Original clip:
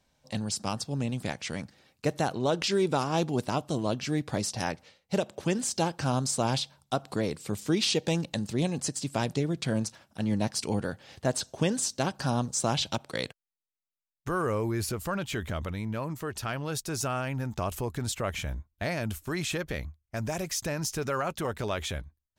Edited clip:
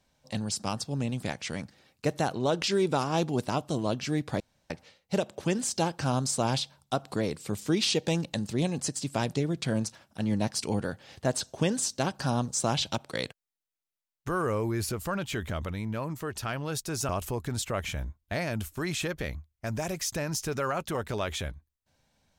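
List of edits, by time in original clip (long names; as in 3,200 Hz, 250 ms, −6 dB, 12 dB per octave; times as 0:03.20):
0:04.40–0:04.70: fill with room tone
0:17.09–0:17.59: remove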